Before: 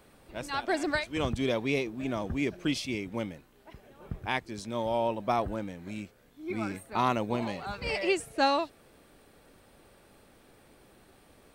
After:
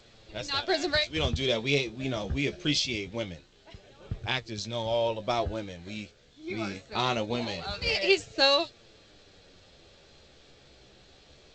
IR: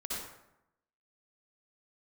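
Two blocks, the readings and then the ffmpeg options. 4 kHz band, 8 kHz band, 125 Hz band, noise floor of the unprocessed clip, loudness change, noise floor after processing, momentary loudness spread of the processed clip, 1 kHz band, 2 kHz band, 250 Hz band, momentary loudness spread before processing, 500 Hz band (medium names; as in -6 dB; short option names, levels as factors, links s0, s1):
+10.0 dB, +4.5 dB, +3.0 dB, -60 dBFS, +2.5 dB, -58 dBFS, 15 LU, -3.0 dB, +3.0 dB, -1.5 dB, 12 LU, +2.0 dB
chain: -af "equalizer=f=250:t=o:w=1:g=-8,equalizer=f=1000:t=o:w=1:g=-8,equalizer=f=2000:t=o:w=1:g=-3,equalizer=f=4000:t=o:w=1:g=8,flanger=delay=8.4:depth=6.9:regen=42:speed=0.23:shape=triangular,volume=2.66" -ar 16000 -c:a g722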